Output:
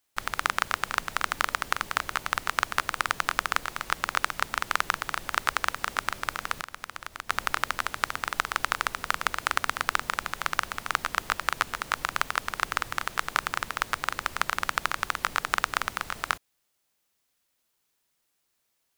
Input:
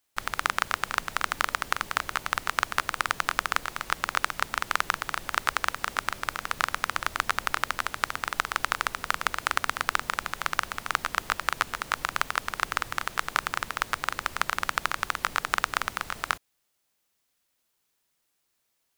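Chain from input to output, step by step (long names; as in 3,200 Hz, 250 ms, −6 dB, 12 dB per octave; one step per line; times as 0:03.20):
0:06.54–0:07.30: downward compressor 3 to 1, threshold −36 dBFS, peak gain reduction 13 dB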